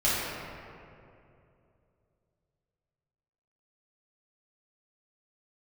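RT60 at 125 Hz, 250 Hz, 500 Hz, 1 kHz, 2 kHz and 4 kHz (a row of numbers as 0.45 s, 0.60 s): 3.4 s, 3.0 s, 3.0 s, 2.4 s, 2.0 s, 1.4 s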